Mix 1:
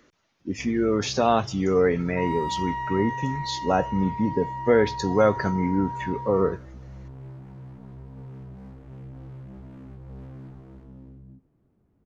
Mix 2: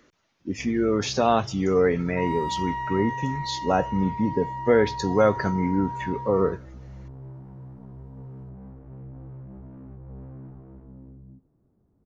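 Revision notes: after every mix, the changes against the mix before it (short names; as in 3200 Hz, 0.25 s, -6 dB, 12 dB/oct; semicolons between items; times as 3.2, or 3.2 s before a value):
first sound: add LPF 1200 Hz 12 dB/oct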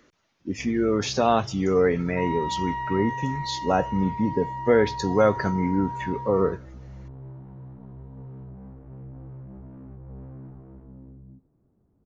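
second sound: add brick-wall FIR low-pass 4200 Hz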